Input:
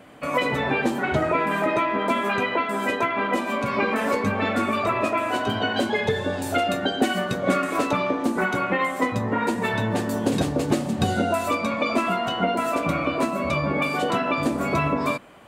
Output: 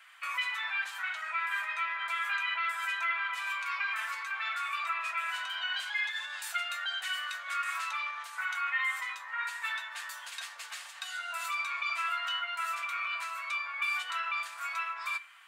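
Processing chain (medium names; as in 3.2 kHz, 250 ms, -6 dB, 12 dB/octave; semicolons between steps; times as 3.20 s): in parallel at -1.5 dB: compressor with a negative ratio -28 dBFS, ratio -1; on the sum: inverse Chebyshev high-pass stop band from 400 Hz, stop band 60 dB; treble shelf 4.2 kHz -5.5 dB; reverberation RT60 0.30 s, pre-delay 4 ms, DRR 8 dB; trim -7 dB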